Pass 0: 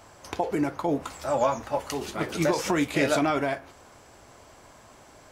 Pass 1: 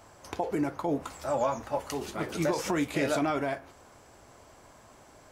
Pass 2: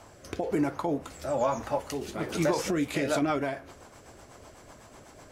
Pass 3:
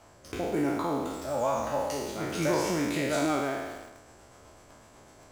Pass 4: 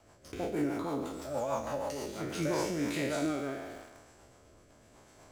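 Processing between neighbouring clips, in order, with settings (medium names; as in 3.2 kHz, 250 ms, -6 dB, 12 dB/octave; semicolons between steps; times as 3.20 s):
peaking EQ 3.3 kHz -2.5 dB 2.1 oct; in parallel at -2 dB: peak limiter -18.5 dBFS, peak gain reduction 7.5 dB; on the sum: trim -7.5 dB
in parallel at +1 dB: compression, threshold -36 dBFS, peak gain reduction 12.5 dB; on the sum: rotary cabinet horn 1.1 Hz, later 8 Hz, at 2.54 s
spectral sustain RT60 1.37 s; in parallel at -9 dB: bit crusher 6-bit; on the sum: trim -6.5 dB
rotary cabinet horn 6.3 Hz, later 0.85 Hz, at 2.13 s; trim -2.5 dB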